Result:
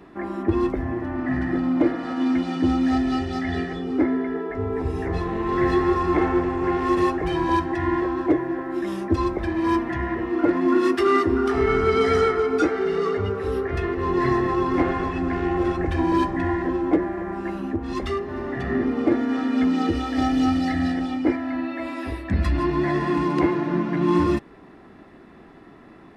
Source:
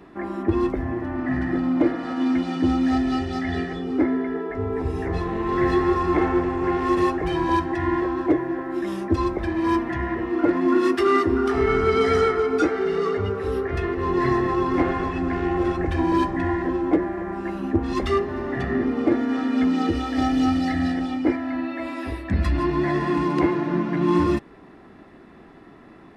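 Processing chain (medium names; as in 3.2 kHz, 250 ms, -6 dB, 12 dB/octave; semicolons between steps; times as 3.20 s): 17.55–18.65 s: compression 2:1, threshold -26 dBFS, peak gain reduction 6.5 dB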